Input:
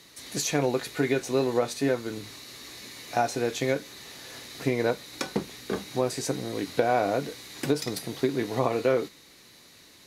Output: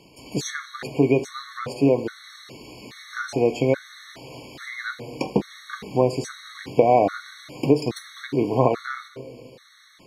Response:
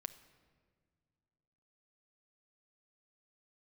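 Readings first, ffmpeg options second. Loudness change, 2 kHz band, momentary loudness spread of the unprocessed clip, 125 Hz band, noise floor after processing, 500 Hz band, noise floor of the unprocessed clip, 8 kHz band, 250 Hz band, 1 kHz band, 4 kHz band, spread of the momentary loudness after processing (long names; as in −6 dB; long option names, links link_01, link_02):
+4.5 dB, +1.5 dB, 15 LU, +6.0 dB, −52 dBFS, +4.0 dB, −54 dBFS, −4.5 dB, +5.0 dB, +4.5 dB, −1.5 dB, 21 LU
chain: -filter_complex "[0:a]lowpass=frequency=2200:poles=1,asplit=2[link_01][link_02];[1:a]atrim=start_sample=2205[link_03];[link_02][link_03]afir=irnorm=-1:irlink=0,volume=10dB[link_04];[link_01][link_04]amix=inputs=2:normalize=0,afftfilt=real='re*gt(sin(2*PI*1.2*pts/sr)*(1-2*mod(floor(b*sr/1024/1100),2)),0)':imag='im*gt(sin(2*PI*1.2*pts/sr)*(1-2*mod(floor(b*sr/1024/1100),2)),0)':win_size=1024:overlap=0.75,volume=-2dB"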